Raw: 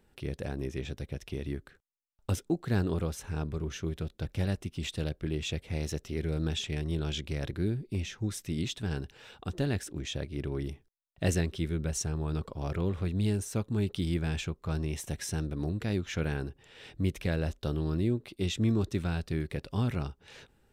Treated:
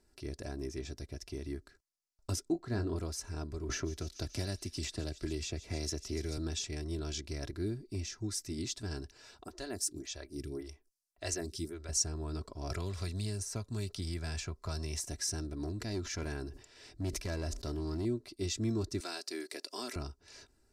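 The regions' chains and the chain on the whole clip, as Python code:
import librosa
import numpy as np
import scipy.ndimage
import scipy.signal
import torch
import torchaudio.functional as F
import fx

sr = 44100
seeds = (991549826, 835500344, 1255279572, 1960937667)

y = fx.chain(x, sr, fx.lowpass(hz=2500.0, slope=6),
    fx.doubler(ms=24.0, db=-10.0), at=(2.52, 2.96))
y = fx.chain(y, sr, fx.echo_wet_highpass(ms=142, feedback_pct=68, hz=2600.0, wet_db=-16.0),
    fx.band_squash(depth_pct=100), at=(3.69, 6.38))
y = fx.chain(y, sr, fx.high_shelf(hz=5700.0, db=11.5),
    fx.stagger_phaser(hz=1.8), at=(9.44, 11.89))
y = fx.chain(y, sr, fx.peak_eq(hz=310.0, db=-9.5, octaves=0.69),
    fx.band_squash(depth_pct=100), at=(12.7, 15.0))
y = fx.chain(y, sr, fx.clip_hard(threshold_db=-25.0),
    fx.sustainer(db_per_s=110.0), at=(15.62, 18.05))
y = fx.chain(y, sr, fx.highpass(hz=310.0, slope=24),
    fx.high_shelf(hz=2300.0, db=9.5), at=(19.0, 19.96))
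y = scipy.signal.sosfilt(scipy.signal.butter(2, 11000.0, 'lowpass', fs=sr, output='sos'), y)
y = fx.high_shelf_res(y, sr, hz=4000.0, db=6.0, q=3.0)
y = y + 0.6 * np.pad(y, (int(3.0 * sr / 1000.0), 0))[:len(y)]
y = F.gain(torch.from_numpy(y), -6.0).numpy()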